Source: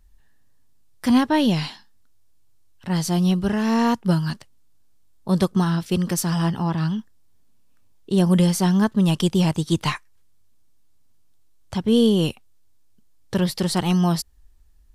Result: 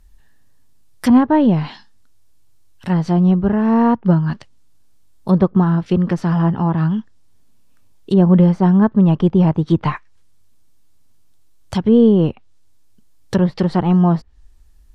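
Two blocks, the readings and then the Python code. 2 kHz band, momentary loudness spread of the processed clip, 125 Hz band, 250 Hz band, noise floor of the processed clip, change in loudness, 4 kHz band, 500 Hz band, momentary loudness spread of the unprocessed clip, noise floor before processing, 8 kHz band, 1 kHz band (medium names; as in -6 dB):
-0.5 dB, 11 LU, +6.0 dB, +6.0 dB, -46 dBFS, +5.5 dB, no reading, +6.0 dB, 11 LU, -52 dBFS, under -10 dB, +4.5 dB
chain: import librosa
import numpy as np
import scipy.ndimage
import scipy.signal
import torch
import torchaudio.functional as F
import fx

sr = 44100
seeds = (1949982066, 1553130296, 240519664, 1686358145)

y = fx.env_lowpass_down(x, sr, base_hz=1200.0, full_db=-18.0)
y = y * librosa.db_to_amplitude(6.0)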